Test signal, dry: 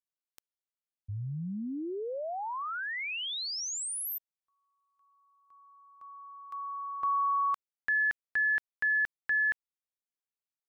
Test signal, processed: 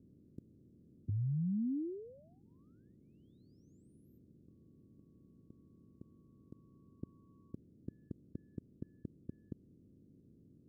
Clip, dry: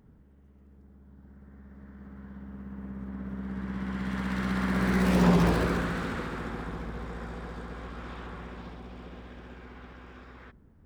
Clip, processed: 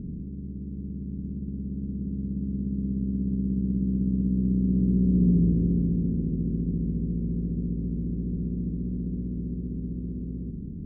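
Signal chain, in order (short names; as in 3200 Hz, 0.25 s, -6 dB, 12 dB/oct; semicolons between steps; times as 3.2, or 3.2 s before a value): per-bin compression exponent 0.4; inverse Chebyshev low-pass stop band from 790 Hz, stop band 50 dB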